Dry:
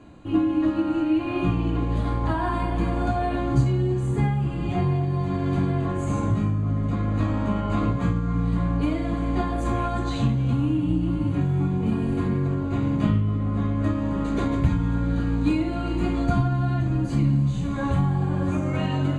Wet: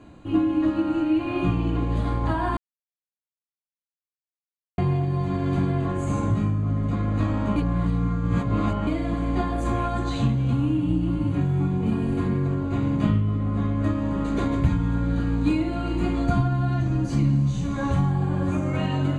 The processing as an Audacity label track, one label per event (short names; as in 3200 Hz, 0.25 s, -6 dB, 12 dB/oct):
2.570000	4.780000	mute
7.560000	8.870000	reverse
16.720000	18.120000	bell 5700 Hz +9.5 dB 0.33 oct